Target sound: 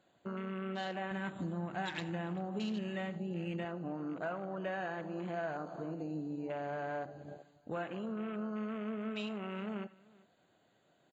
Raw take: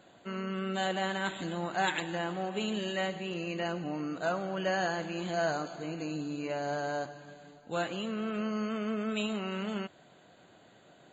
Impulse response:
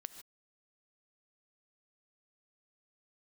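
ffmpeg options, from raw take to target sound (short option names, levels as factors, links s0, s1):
-filter_complex "[0:a]afwtdn=0.00891,asettb=1/sr,asplit=3[s0][s1][s2];[s0]atrim=end=1.114[s3];[s1]atrim=start=1.11:end=3.65,asetpts=PTS-STARTPTS,afade=t=in:d=0.004:c=qsin,afade=t=out:st=2.536:d=0.004:c=qsin,bass=f=250:g=11,treble=f=4000:g=7[s4];[s2]atrim=start=3.646[s5];[s3][s4]acrossfade=d=0.004:c1=hsin:c2=qsin[s6];[s6][s5]acrossfade=d=0.004:c1=qsin:c2=hsin,acompressor=threshold=0.00708:ratio=3,aecho=1:1:389:0.0668[s7];[1:a]atrim=start_sample=2205,afade=t=out:st=0.14:d=0.01,atrim=end_sample=6615[s8];[s7][s8]afir=irnorm=-1:irlink=0,volume=2.66"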